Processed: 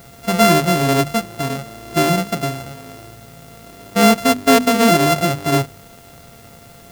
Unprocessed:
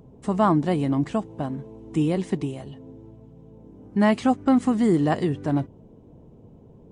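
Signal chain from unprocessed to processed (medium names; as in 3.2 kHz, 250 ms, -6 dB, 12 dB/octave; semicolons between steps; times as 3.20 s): sorted samples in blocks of 64 samples; harmonic-percussive split percussive -6 dB; hum notches 50/100/150/200/250 Hz; in parallel at -4.5 dB: word length cut 8-bit, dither triangular; on the sum: trim +3.5 dB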